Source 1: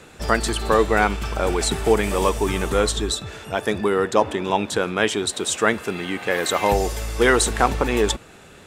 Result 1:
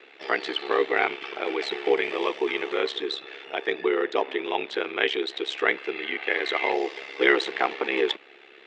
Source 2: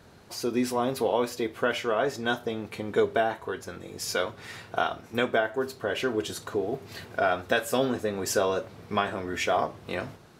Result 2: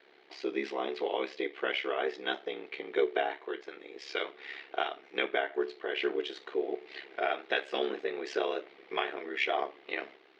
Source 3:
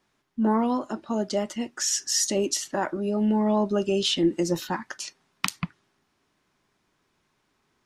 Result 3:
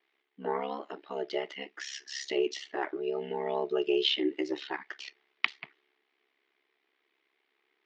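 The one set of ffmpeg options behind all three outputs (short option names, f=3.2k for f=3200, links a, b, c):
-af "highpass=f=390:w=0.5412,highpass=f=390:w=1.3066,equalizer=f=390:t=q:w=4:g=6,equalizer=f=550:t=q:w=4:g=-10,equalizer=f=990:t=q:w=4:g=-7,equalizer=f=1.4k:t=q:w=4:g=-5,equalizer=f=2.1k:t=q:w=4:g=7,equalizer=f=3.1k:t=q:w=4:g=3,lowpass=f=3.9k:w=0.5412,lowpass=f=3.9k:w=1.3066,aeval=exprs='val(0)*sin(2*PI*34*n/s)':c=same"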